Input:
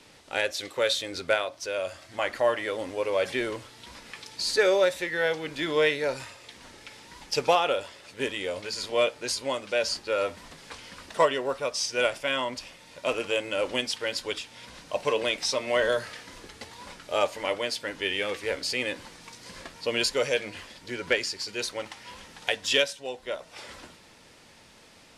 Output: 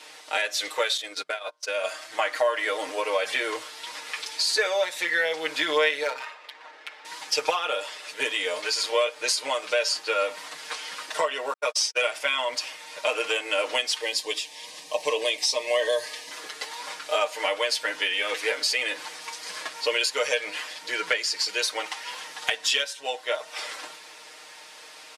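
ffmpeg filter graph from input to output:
ffmpeg -i in.wav -filter_complex "[0:a]asettb=1/sr,asplit=3[link_01][link_02][link_03];[link_01]atrim=end=0.974[link_04];[link_02]atrim=start=0.97:end=1.84,asetpts=PTS-STARTPTS,afade=type=in:duration=0.004:curve=qsin,afade=type=out:start_time=0.866:duration=0.004:curve=qsin,bandreject=frequency=117.8:width_type=h:width=4,bandreject=frequency=235.6:width_type=h:width=4,bandreject=frequency=353.4:width_type=h:width=4,bandreject=frequency=471.2:width_type=h:width=4,bandreject=frequency=589:width_type=h:width=4,bandreject=frequency=706.8:width_type=h:width=4,bandreject=frequency=824.6:width_type=h:width=4,bandreject=frequency=942.4:width_type=h:width=4,bandreject=frequency=1060.2:width_type=h:width=4,bandreject=frequency=1178:width_type=h:width=4,bandreject=frequency=1295.8:width_type=h:width=4,bandreject=frequency=1413.6:width_type=h:width=4,bandreject=frequency=1531.4:width_type=h:width=4,bandreject=frequency=1649.2:width_type=h:width=4,acompressor=threshold=-29dB:ratio=16:attack=3.2:release=140:knee=1:detection=peak,agate=range=-29dB:threshold=-36dB:ratio=16:release=100:detection=peak[link_05];[link_03]atrim=start=1.836[link_06];[link_04][link_05]acrossfade=duration=0.004:curve1=hsin:curve2=qsin[link_07];[link_07][link_06]acrossfade=duration=0.004:curve1=qsin:curve2=hsin,asettb=1/sr,asplit=3[link_08][link_09][link_10];[link_08]atrim=end=6.034[link_11];[link_09]atrim=start=6.03:end=7.05,asetpts=PTS-STARTPTS,afade=type=in:duration=0.004:curve=qsin,afade=type=out:start_time=1.016:duration=0.004:curve=qsin,equalizer=frequency=140:width=0.6:gain=-13.5,bandreject=frequency=50:width_type=h:width=6,bandreject=frequency=100:width_type=h:width=6,bandreject=frequency=150:width_type=h:width=6,bandreject=frequency=200:width_type=h:width=6,bandreject=frequency=250:width_type=h:width=6,bandreject=frequency=300:width_type=h:width=6,bandreject=frequency=350:width_type=h:width=6,bandreject=frequency=400:width_type=h:width=6,bandreject=frequency=450:width_type=h:width=6,adynamicsmooth=sensitivity=6.5:basefreq=1700[link_12];[link_10]atrim=start=7.046[link_13];[link_11][link_12]acrossfade=duration=0.004:curve1=hsin:curve2=qsin[link_14];[link_14][link_13]acrossfade=duration=0.004:curve1=qsin:curve2=hsin,asettb=1/sr,asplit=3[link_15][link_16][link_17];[link_15]atrim=end=11.534[link_18];[link_16]atrim=start=11.53:end=12.02,asetpts=PTS-STARTPTS,afade=type=in:duration=0.004:curve=qsin,afade=type=out:start_time=0.486:duration=0.004:curve=qsin,agate=range=-58dB:threshold=-33dB:ratio=16:release=100:detection=peak,lowshelf=frequency=180:gain=-7.5[link_19];[link_17]atrim=start=12.016[link_20];[link_18][link_19]acrossfade=duration=0.004:curve1=hsin:curve2=qsin[link_21];[link_21][link_20]acrossfade=duration=0.004:curve1=qsin:curve2=hsin,asettb=1/sr,asplit=3[link_22][link_23][link_24];[link_22]atrim=end=14.014[link_25];[link_23]atrim=start=14.01:end=16.31,asetpts=PTS-STARTPTS,afade=type=in:duration=0.004:curve=qsin,afade=type=out:start_time=2.296:duration=0.004:curve=qsin,asuperstop=centerf=1400:order=8:qfactor=4.1,equalizer=frequency=1400:width_type=o:width=2.2:gain=-8[link_26];[link_24]atrim=start=16.306[link_27];[link_25][link_26]acrossfade=duration=0.004:curve1=hsin:curve2=qsin[link_28];[link_28][link_27]acrossfade=duration=0.004:curve1=qsin:curve2=hsin,highpass=640,acompressor=threshold=-31dB:ratio=6,aecho=1:1:6.5:0.91,volume=7dB" out.wav

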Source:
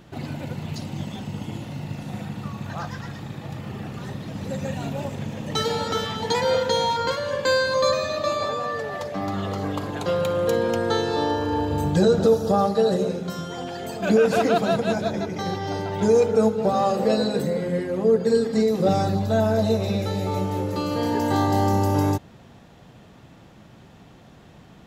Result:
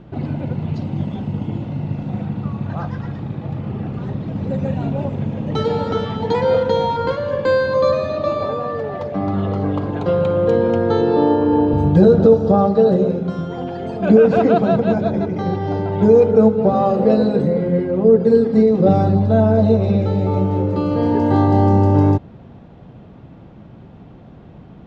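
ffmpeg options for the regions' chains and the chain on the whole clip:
ffmpeg -i in.wav -filter_complex "[0:a]asettb=1/sr,asplit=3[link_01][link_02][link_03];[link_01]atrim=end=11.014[link_04];[link_02]atrim=start=11.01:end=11.74,asetpts=PTS-STARTPTS,afade=type=in:duration=0.004:curve=qsin,afade=type=out:start_time=0.726:duration=0.004:curve=qsin,highpass=200,lowpass=5500,lowshelf=frequency=340:gain=8[link_05];[link_03]atrim=start=11.736[link_06];[link_04][link_05]acrossfade=duration=0.004:curve1=hsin:curve2=qsin[link_07];[link_07][link_06]acrossfade=duration=0.004:curve1=qsin:curve2=hsin,lowpass=3400,tiltshelf=frequency=900:gain=6,bandreject=frequency=1800:width=19,volume=3dB" out.wav

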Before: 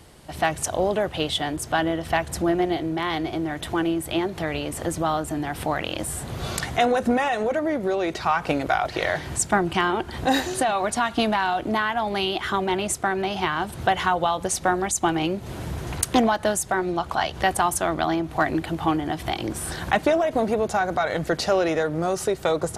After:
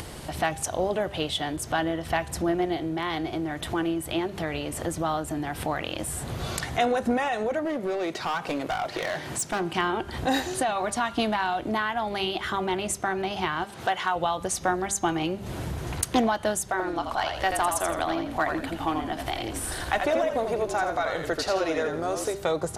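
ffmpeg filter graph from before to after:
ffmpeg -i in.wav -filter_complex "[0:a]asettb=1/sr,asplit=3[link_01][link_02][link_03];[link_01]atrim=end=7.654[link_04];[link_02]atrim=start=7.65:end=9.78,asetpts=PTS-STARTPTS,afade=type=in:duration=0.004:curve=qsin,afade=type=out:start_time=2.126:duration=0.004:curve=qsin,highpass=150,asoftclip=type=hard:threshold=-20.5dB[link_05];[link_03]atrim=start=9.776[link_06];[link_04][link_05]acrossfade=duration=0.004:curve1=hsin:curve2=qsin[link_07];[link_07][link_06]acrossfade=duration=0.004:curve1=qsin:curve2=hsin,asettb=1/sr,asplit=3[link_08][link_09][link_10];[link_08]atrim=end=13.644[link_11];[link_09]atrim=start=13.64:end=14.16,asetpts=PTS-STARTPTS,afade=type=in:duration=0.004:curve=qsin,afade=type=out:start_time=0.516:duration=0.004:curve=qsin,highpass=frequency=480:poles=1,acrossover=split=7400[link_12][link_13];[link_13]acompressor=threshold=-53dB:ratio=4:attack=1:release=60[link_14];[link_12][link_14]amix=inputs=2:normalize=0,asoftclip=type=hard:threshold=-10.5dB[link_15];[link_10]atrim=start=14.156[link_16];[link_11][link_15]acrossfade=duration=0.004:curve1=hsin:curve2=qsin[link_17];[link_17][link_16]acrossfade=duration=0.004:curve1=qsin:curve2=hsin,asettb=1/sr,asplit=3[link_18][link_19][link_20];[link_18]atrim=end=16.704[link_21];[link_19]atrim=start=16.7:end=22.35,asetpts=PTS-STARTPTS,afade=type=in:duration=0.004:curve=qsin,afade=type=out:start_time=5.646:duration=0.004:curve=qsin,equalizer=frequency=190:width=1.4:gain=-10.5,aeval=exprs='clip(val(0),-1,0.2)':channel_layout=same,asplit=5[link_22][link_23][link_24][link_25][link_26];[link_23]adelay=83,afreqshift=-49,volume=-5.5dB[link_27];[link_24]adelay=166,afreqshift=-98,volume=-15.7dB[link_28];[link_25]adelay=249,afreqshift=-147,volume=-25.8dB[link_29];[link_26]adelay=332,afreqshift=-196,volume=-36dB[link_30];[link_22][link_27][link_28][link_29][link_30]amix=inputs=5:normalize=0,atrim=end_sample=249165[link_31];[link_20]atrim=start=22.346[link_32];[link_21][link_31]acrossfade=duration=0.004:curve1=hsin:curve2=qsin[link_33];[link_33][link_32]acrossfade=duration=0.004:curve1=qsin:curve2=hsin,bandreject=frequency=198.8:width_type=h:width=4,bandreject=frequency=397.6:width_type=h:width=4,bandreject=frequency=596.4:width_type=h:width=4,bandreject=frequency=795.2:width_type=h:width=4,bandreject=frequency=994:width_type=h:width=4,bandreject=frequency=1192.8:width_type=h:width=4,bandreject=frequency=1391.6:width_type=h:width=4,bandreject=frequency=1590.4:width_type=h:width=4,bandreject=frequency=1789.2:width_type=h:width=4,bandreject=frequency=1988:width_type=h:width=4,bandreject=frequency=2186.8:width_type=h:width=4,bandreject=frequency=2385.6:width_type=h:width=4,bandreject=frequency=2584.4:width_type=h:width=4,bandreject=frequency=2783.2:width_type=h:width=4,bandreject=frequency=2982:width_type=h:width=4,bandreject=frequency=3180.8:width_type=h:width=4,bandreject=frequency=3379.6:width_type=h:width=4,bandreject=frequency=3578.4:width_type=h:width=4,bandreject=frequency=3777.2:width_type=h:width=4,bandreject=frequency=3976:width_type=h:width=4,bandreject=frequency=4174.8:width_type=h:width=4,bandreject=frequency=4373.6:width_type=h:width=4,bandreject=frequency=4572.4:width_type=h:width=4,bandreject=frequency=4771.2:width_type=h:width=4,bandreject=frequency=4970:width_type=h:width=4,bandreject=frequency=5168.8:width_type=h:width=4,bandreject=frequency=5367.6:width_type=h:width=4,bandreject=frequency=5566.4:width_type=h:width=4,bandreject=frequency=5765.2:width_type=h:width=4,bandreject=frequency=5964:width_type=h:width=4,bandreject=frequency=6162.8:width_type=h:width=4,bandreject=frequency=6361.6:width_type=h:width=4,bandreject=frequency=6560.4:width_type=h:width=4,acompressor=mode=upward:threshold=-23dB:ratio=2.5,volume=-3.5dB" out.wav

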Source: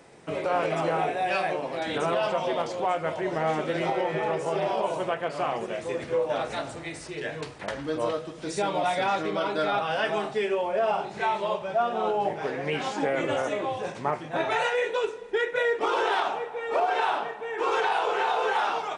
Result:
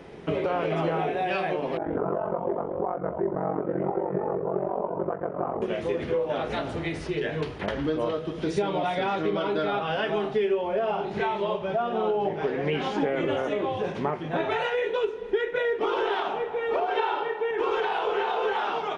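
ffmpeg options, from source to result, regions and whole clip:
ffmpeg -i in.wav -filter_complex "[0:a]asettb=1/sr,asplit=3[link_01][link_02][link_03];[link_01]atrim=end=1.774[link_04];[link_02]atrim=start=1.77:end=5.62,asetpts=PTS-STARTPTS,afade=type=in:duration=0.004:curve=qsin,afade=type=out:start_time=3.846:duration=0.004:curve=qsin,aeval=exprs='val(0)*sin(2*PI*23*n/s)':channel_layout=same,lowpass=frequency=1300:width=0.5412,lowpass=frequency=1300:width=1.3066[link_05];[link_03]atrim=start=5.616[link_06];[link_04][link_05]acrossfade=duration=0.004:curve1=hsin:curve2=qsin[link_07];[link_07][link_06]acrossfade=duration=0.004:curve1=qsin:curve2=hsin,asettb=1/sr,asplit=3[link_08][link_09][link_10];[link_08]atrim=end=16.974[link_11];[link_09]atrim=start=16.97:end=17.51,asetpts=PTS-STARTPTS,afade=type=in:duration=0.004:curve=qsin,afade=type=out:start_time=0.536:duration=0.004:curve=qsin,highpass=180,lowpass=7200,aecho=1:1:2.2:0.84,atrim=end_sample=23814[link_12];[link_10]atrim=start=17.506[link_13];[link_11][link_12]acrossfade=duration=0.004:curve1=hsin:curve2=qsin[link_14];[link_14][link_13]acrossfade=duration=0.004:curve1=qsin:curve2=hsin,equalizer=frequency=125:width_type=o:width=0.33:gain=-11,equalizer=frequency=400:width_type=o:width=0.33:gain=7,equalizer=frequency=3150:width_type=o:width=0.33:gain=5,equalizer=frequency=8000:width_type=o:width=0.33:gain=-11,acompressor=threshold=-32dB:ratio=2.5,bass=frequency=250:gain=10,treble=frequency=4000:gain=-7,volume=4.5dB" out.wav

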